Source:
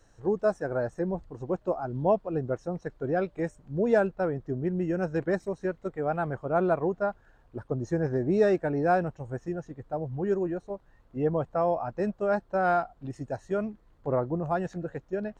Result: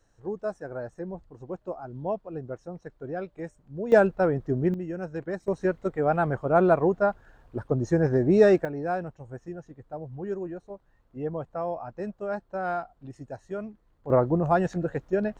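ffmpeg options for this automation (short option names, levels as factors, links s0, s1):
-af "asetnsamples=n=441:p=0,asendcmd='3.92 volume volume 5dB;4.74 volume volume -5dB;5.48 volume volume 5dB;8.65 volume volume -5dB;14.1 volume volume 6dB',volume=0.501"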